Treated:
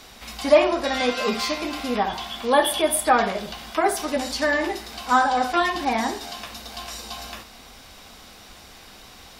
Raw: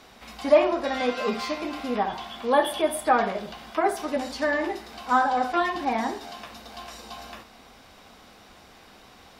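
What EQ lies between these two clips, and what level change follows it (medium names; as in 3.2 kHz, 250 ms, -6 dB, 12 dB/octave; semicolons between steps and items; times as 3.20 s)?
bass shelf 80 Hz +10 dB; treble shelf 2.8 kHz +10 dB; +1.5 dB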